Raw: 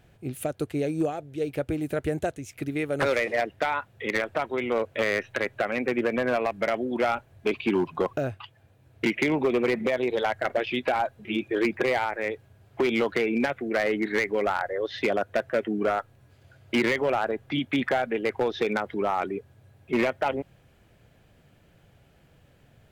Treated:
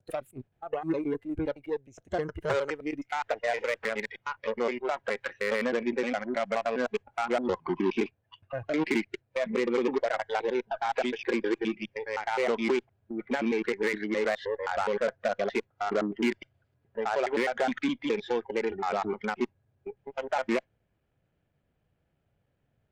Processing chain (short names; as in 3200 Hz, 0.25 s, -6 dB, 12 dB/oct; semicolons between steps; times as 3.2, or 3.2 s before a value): slices in reverse order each 0.104 s, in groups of 6; high shelf 3700 Hz -11.5 dB; added harmonics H 6 -20 dB, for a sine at -17.5 dBFS; spectral noise reduction 14 dB; gain -2 dB